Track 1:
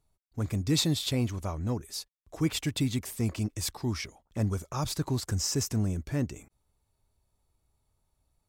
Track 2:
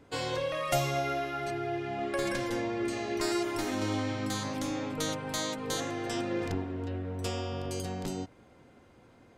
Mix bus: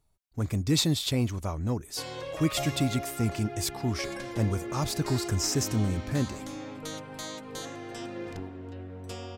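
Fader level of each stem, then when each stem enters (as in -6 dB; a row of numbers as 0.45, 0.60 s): +1.5, -5.5 dB; 0.00, 1.85 s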